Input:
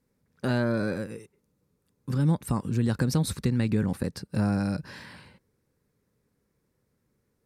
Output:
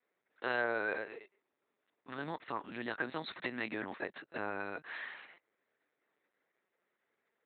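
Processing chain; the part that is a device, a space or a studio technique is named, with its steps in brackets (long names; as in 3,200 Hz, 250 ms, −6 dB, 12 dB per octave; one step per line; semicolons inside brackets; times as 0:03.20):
talking toy (linear-prediction vocoder at 8 kHz pitch kept; high-pass filter 620 Hz 12 dB per octave; parametric band 1,900 Hz +5.5 dB 0.51 octaves)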